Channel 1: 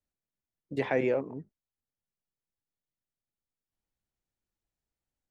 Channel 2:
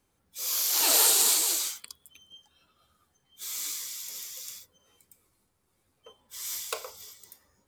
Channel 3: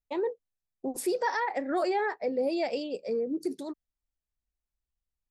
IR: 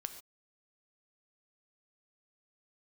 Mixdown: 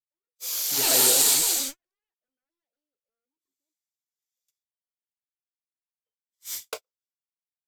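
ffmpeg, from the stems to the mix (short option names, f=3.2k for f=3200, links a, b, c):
-filter_complex "[0:a]volume=-8.5dB[a];[1:a]volume=8.5dB,afade=t=out:st=1.58:d=0.21:silence=0.334965,afade=t=in:st=4.15:d=0.21:silence=0.334965,afade=t=out:st=6.53:d=0.63:silence=0.334965[b];[2:a]aeval=exprs='0.0299*(abs(mod(val(0)/0.0299+3,4)-2)-1)':c=same,volume=-11.5dB[c];[a][b][c]amix=inputs=3:normalize=0,agate=range=-52dB:threshold=-35dB:ratio=16:detection=peak,dynaudnorm=f=620:g=3:m=5.5dB,equalizer=f=1.1k:w=3.3:g=-5.5"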